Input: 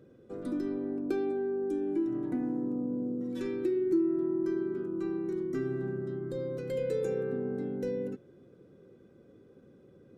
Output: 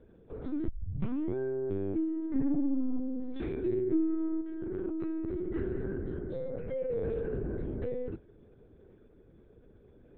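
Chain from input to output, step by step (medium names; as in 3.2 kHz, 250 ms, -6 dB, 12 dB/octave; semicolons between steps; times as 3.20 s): octave divider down 2 oct, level -1 dB; 0.67 s: tape start 0.69 s; 6.49–7.10 s: low-pass 2.1 kHz 12 dB/octave; LPC vocoder at 8 kHz pitch kept; 2.35–3.00 s: comb 7 ms, depth 78%; 4.41–4.96 s: compressor with a negative ratio -34 dBFS, ratio -1; trim -2 dB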